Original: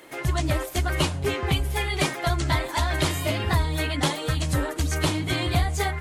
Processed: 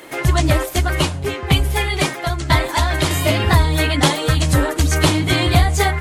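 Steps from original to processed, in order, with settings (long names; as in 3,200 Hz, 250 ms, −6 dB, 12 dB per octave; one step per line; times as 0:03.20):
0:00.50–0:03.11: shaped tremolo saw down 1 Hz, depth 65%
level +9 dB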